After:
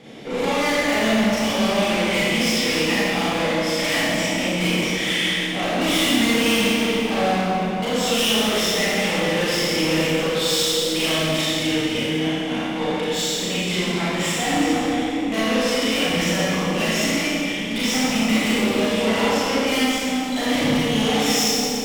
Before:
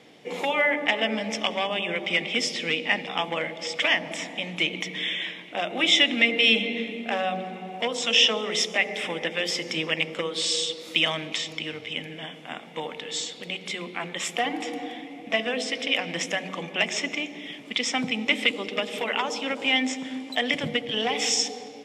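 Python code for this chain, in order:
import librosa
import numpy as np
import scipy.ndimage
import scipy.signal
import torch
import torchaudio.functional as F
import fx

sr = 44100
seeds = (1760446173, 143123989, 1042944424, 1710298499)

y = fx.low_shelf(x, sr, hz=350.0, db=10.0)
y = fx.tube_stage(y, sr, drive_db=30.0, bias=0.3)
y = fx.rev_schroeder(y, sr, rt60_s=2.0, comb_ms=28, drr_db=-9.0)
y = F.gain(torch.from_numpy(y), 3.0).numpy()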